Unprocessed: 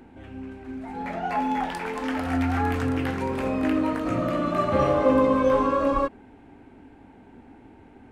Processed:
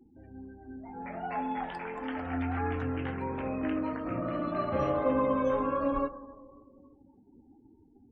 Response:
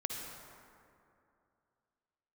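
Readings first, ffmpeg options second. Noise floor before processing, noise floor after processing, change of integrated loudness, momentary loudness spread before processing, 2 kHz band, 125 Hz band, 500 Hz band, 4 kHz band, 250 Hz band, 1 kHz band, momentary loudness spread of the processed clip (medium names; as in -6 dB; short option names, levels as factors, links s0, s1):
-51 dBFS, -61 dBFS, -7.5 dB, 16 LU, -8.0 dB, -7.0 dB, -7.5 dB, -11.5 dB, -7.5 dB, -7.5 dB, 18 LU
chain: -filter_complex "[0:a]asplit=2[s0][s1];[1:a]atrim=start_sample=2205,adelay=136[s2];[s1][s2]afir=irnorm=-1:irlink=0,volume=0.133[s3];[s0][s3]amix=inputs=2:normalize=0,afftdn=nr=36:nf=-42,flanger=delay=6:depth=1.1:regen=85:speed=0.25:shape=triangular,volume=0.708"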